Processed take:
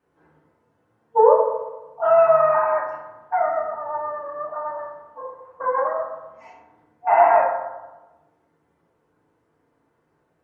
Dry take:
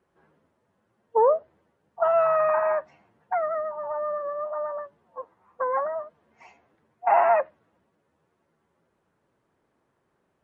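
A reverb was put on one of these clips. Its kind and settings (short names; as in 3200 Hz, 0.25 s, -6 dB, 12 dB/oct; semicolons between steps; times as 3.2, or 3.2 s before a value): FDN reverb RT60 1.1 s, low-frequency decay 0.85×, high-frequency decay 0.35×, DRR -6.5 dB; gain -3.5 dB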